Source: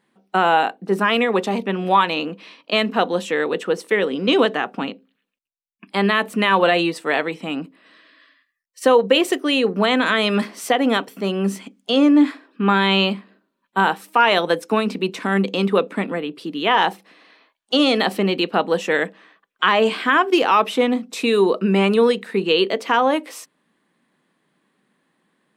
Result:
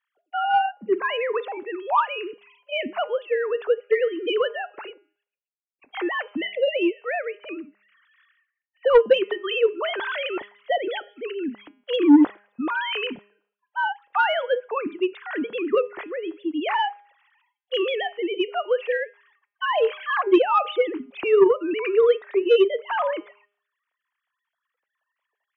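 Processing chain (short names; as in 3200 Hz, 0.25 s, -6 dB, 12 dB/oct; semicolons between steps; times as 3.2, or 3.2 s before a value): sine-wave speech; spectral repair 6.45–6.81, 630–1900 Hz both; de-hum 204.4 Hz, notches 16; soft clip -3.5 dBFS, distortion -16 dB; gain -3 dB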